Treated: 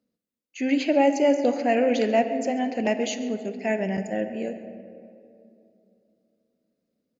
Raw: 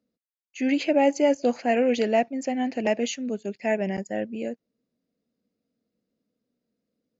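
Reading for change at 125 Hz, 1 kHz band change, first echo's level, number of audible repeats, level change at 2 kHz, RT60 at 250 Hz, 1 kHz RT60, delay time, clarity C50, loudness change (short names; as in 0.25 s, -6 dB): +1.5 dB, +1.5 dB, -18.5 dB, 1, +0.5 dB, 3.2 s, 2.3 s, 0.136 s, 9.0 dB, +1.0 dB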